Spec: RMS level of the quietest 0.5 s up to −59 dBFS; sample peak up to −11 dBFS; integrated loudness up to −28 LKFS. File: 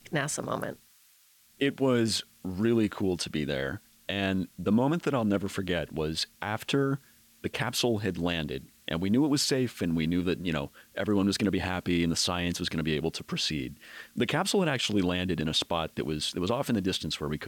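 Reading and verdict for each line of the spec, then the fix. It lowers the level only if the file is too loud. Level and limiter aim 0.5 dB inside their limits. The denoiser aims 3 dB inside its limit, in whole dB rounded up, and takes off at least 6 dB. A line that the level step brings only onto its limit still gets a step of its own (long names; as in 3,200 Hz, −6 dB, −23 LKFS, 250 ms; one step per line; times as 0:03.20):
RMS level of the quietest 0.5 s −62 dBFS: in spec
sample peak −15.5 dBFS: in spec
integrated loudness −29.0 LKFS: in spec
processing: no processing needed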